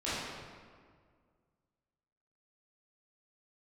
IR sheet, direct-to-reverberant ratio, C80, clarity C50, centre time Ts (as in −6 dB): −12.5 dB, −0.5 dB, −3.5 dB, 125 ms